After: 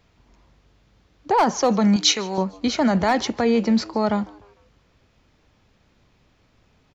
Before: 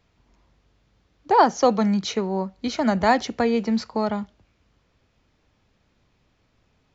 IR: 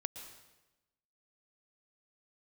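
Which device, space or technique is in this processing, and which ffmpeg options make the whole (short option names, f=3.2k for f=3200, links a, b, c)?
clipper into limiter: -filter_complex "[0:a]asoftclip=type=hard:threshold=-10dB,alimiter=limit=-16.5dB:level=0:latency=1:release=22,asettb=1/sr,asplit=3[a][b][c];[a]atrim=end=1.964[d];[b]atrim=start=1.96:end=2.38,asetpts=PTS-STARTPTS,afade=t=in:d=0.004:c=qsin,afade=t=out:st=0.416:d=0.004:c=qsin,tiltshelf=f=1.2k:g=-9.5[e];[c]atrim=start=2.376[f];[d][e]acrossfade=d=0.004:c1=hsin:c2=qsin[g];[g][f]acrossfade=d=0.004:c1=qsin:c2=hsin,asplit=4[h][i][j][k];[i]adelay=151,afreqshift=100,volume=-23.5dB[l];[j]adelay=302,afreqshift=200,volume=-31.5dB[m];[k]adelay=453,afreqshift=300,volume=-39.4dB[n];[h][l][m][n]amix=inputs=4:normalize=0,volume=5dB"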